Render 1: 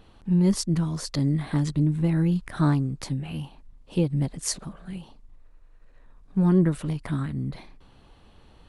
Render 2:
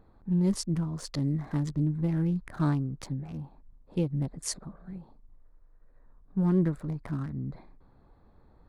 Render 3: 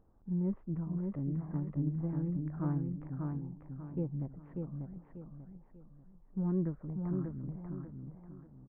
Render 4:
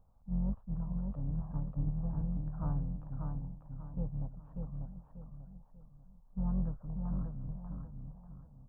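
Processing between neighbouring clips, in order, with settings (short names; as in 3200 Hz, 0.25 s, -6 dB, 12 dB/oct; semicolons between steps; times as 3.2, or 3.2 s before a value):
Wiener smoothing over 15 samples; gain -5 dB
Gaussian blur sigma 5.9 samples; feedback echo 0.591 s, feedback 35%, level -4 dB; gain -7.5 dB
octaver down 2 oct, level -1 dB; fixed phaser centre 850 Hz, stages 4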